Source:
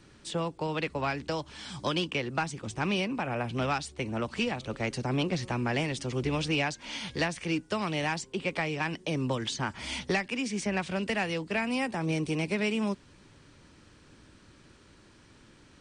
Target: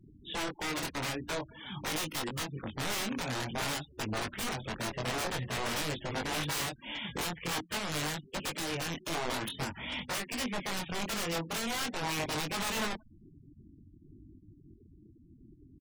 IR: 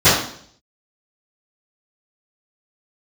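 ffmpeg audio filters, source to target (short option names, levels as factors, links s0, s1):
-filter_complex "[0:a]aresample=8000,aresample=44100,asplit=3[s0][s1][s2];[s0]afade=t=out:st=0.99:d=0.02[s3];[s1]highshelf=f=3100:g=-7.5,afade=t=in:st=0.99:d=0.02,afade=t=out:st=1.65:d=0.02[s4];[s2]afade=t=in:st=1.65:d=0.02[s5];[s3][s4][s5]amix=inputs=3:normalize=0,asplit=3[s6][s7][s8];[s6]afade=t=out:st=11.38:d=0.02[s9];[s7]highpass=f=52:p=1,afade=t=in:st=11.38:d=0.02,afade=t=out:st=12.4:d=0.02[s10];[s8]afade=t=in:st=12.4:d=0.02[s11];[s9][s10][s11]amix=inputs=3:normalize=0,asplit=2[s12][s13];[s13]acompressor=threshold=0.00631:ratio=8,volume=1[s14];[s12][s14]amix=inputs=2:normalize=0,aeval=exprs='(mod(18.8*val(0)+1,2)-1)/18.8':c=same,flanger=delay=19.5:depth=4.7:speed=0.49,aecho=1:1:180|360:0.0668|0.0167,afftfilt=real='re*gte(hypot(re,im),0.00794)':imag='im*gte(hypot(re,im),0.00794)':win_size=1024:overlap=0.75"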